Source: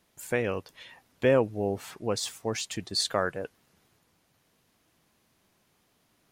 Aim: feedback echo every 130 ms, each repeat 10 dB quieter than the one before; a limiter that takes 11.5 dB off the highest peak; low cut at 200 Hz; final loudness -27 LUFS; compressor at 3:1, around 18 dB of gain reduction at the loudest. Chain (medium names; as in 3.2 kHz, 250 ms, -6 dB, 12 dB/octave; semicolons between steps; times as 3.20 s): high-pass 200 Hz; compression 3:1, threshold -43 dBFS; peak limiter -35 dBFS; feedback delay 130 ms, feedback 32%, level -10 dB; trim +19.5 dB